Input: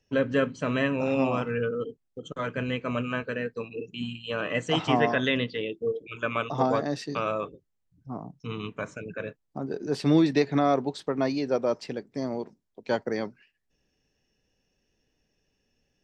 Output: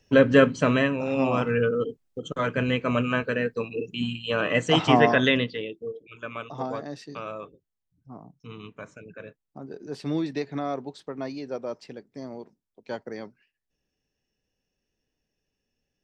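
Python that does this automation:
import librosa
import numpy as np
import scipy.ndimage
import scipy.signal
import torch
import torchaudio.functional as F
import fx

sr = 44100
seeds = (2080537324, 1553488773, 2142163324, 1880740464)

y = fx.gain(x, sr, db=fx.line((0.62, 8.0), (1.04, -2.0), (1.46, 5.0), (5.27, 5.0), (5.93, -7.0)))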